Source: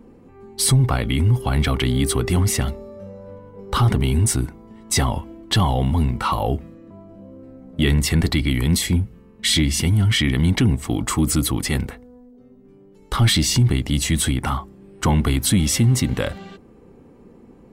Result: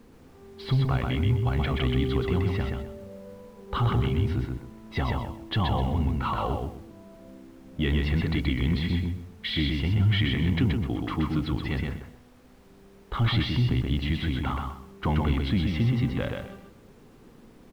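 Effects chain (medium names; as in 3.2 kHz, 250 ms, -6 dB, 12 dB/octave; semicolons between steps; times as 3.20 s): inverse Chebyshev low-pass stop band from 6.7 kHz, stop band 40 dB; added noise pink -49 dBFS; on a send: feedback delay 127 ms, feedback 26%, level -3.5 dB; on the sum: tape noise reduction on one side only decoder only; trim -8 dB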